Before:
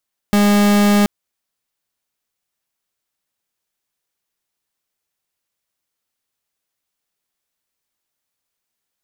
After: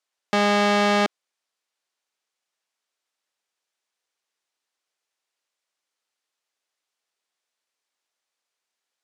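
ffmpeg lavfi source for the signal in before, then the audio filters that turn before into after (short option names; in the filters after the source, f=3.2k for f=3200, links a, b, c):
-f lavfi -i "aevalsrc='0.237*(2*lt(mod(205*t,1),0.42)-1)':d=0.73:s=44100"
-filter_complex "[0:a]highpass=400,lowpass=7.3k,acrossover=split=5500[a][b];[b]acompressor=threshold=-41dB:ratio=4:attack=1:release=60[c];[a][c]amix=inputs=2:normalize=0"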